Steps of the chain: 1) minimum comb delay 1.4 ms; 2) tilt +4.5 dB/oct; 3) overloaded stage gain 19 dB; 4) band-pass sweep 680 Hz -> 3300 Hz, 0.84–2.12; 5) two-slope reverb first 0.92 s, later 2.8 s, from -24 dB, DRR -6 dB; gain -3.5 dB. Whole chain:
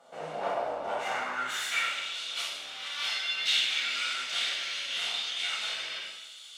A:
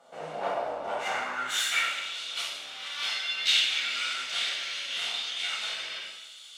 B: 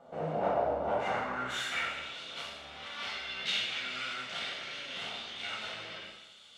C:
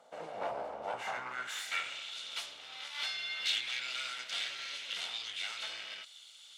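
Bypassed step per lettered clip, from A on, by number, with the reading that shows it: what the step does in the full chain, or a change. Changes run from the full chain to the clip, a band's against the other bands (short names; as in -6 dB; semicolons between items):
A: 3, distortion -8 dB; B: 2, 500 Hz band +8.5 dB; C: 5, loudness change -7.0 LU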